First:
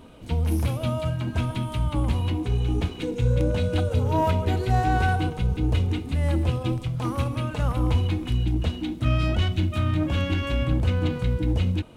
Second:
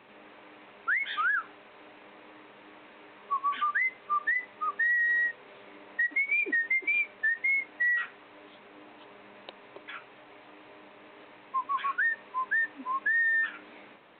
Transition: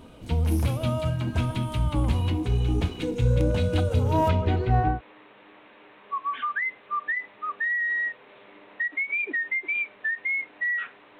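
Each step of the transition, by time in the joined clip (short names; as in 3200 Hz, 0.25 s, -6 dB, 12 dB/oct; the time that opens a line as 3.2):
first
4.28–5.01 LPF 5500 Hz -> 1200 Hz
4.94 switch to second from 2.13 s, crossfade 0.14 s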